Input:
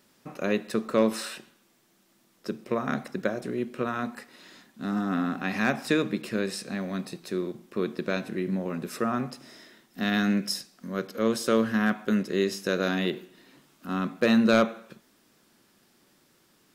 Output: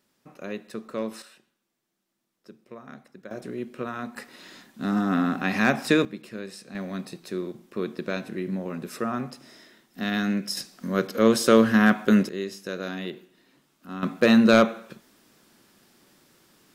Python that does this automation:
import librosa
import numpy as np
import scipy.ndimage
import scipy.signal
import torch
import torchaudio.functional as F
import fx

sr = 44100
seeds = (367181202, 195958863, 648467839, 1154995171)

y = fx.gain(x, sr, db=fx.steps((0.0, -8.0), (1.22, -15.0), (3.31, -3.0), (4.16, 4.0), (6.05, -8.0), (6.75, -1.0), (10.57, 6.5), (12.29, -6.0), (14.03, 4.0)))